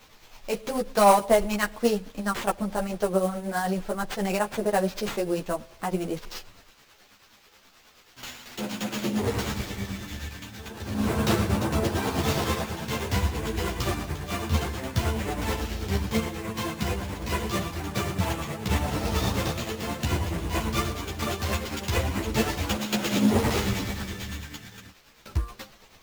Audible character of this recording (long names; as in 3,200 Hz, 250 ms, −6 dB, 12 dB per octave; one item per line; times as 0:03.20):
a quantiser's noise floor 10 bits, dither triangular
tremolo triangle 9.3 Hz, depth 55%
aliases and images of a low sample rate 9,900 Hz, jitter 20%
a shimmering, thickened sound